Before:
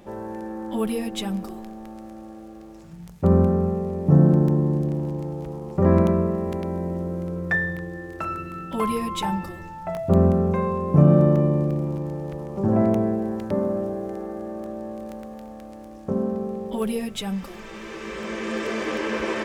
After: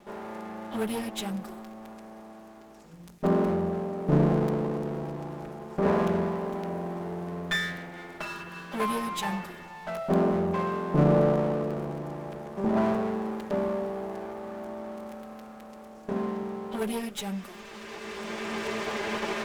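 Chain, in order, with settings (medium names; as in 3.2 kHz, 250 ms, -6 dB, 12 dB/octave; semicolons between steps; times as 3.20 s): comb filter that takes the minimum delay 4.9 ms; bass shelf 160 Hz -10 dB; trim -2 dB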